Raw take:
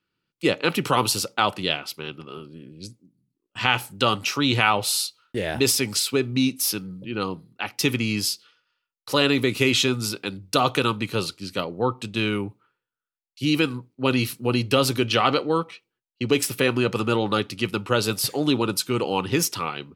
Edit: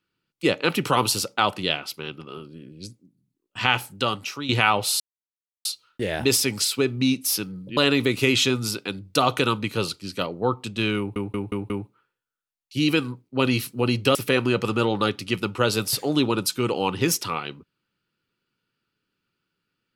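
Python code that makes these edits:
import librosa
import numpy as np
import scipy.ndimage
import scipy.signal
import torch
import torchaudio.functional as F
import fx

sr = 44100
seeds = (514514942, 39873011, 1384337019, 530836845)

y = fx.edit(x, sr, fx.fade_out_to(start_s=3.72, length_s=0.77, floor_db=-11.5),
    fx.insert_silence(at_s=5.0, length_s=0.65),
    fx.cut(start_s=7.12, length_s=2.03),
    fx.stutter(start_s=12.36, slice_s=0.18, count=5),
    fx.cut(start_s=14.81, length_s=1.65), tone=tone)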